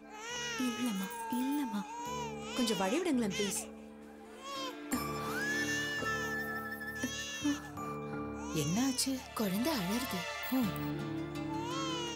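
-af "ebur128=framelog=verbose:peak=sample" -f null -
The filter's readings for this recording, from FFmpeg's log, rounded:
Integrated loudness:
  I:         -35.7 LUFS
  Threshold: -45.9 LUFS
Loudness range:
  LRA:         1.8 LU
  Threshold: -55.7 LUFS
  LRA low:   -36.6 LUFS
  LRA high:  -34.8 LUFS
Sample peak:
  Peak:      -20.3 dBFS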